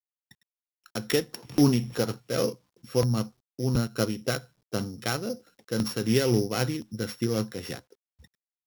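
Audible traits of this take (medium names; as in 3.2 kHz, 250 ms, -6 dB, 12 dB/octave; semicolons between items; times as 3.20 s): a buzz of ramps at a fixed pitch in blocks of 8 samples; tremolo triangle 3.8 Hz, depth 50%; a quantiser's noise floor 12-bit, dither none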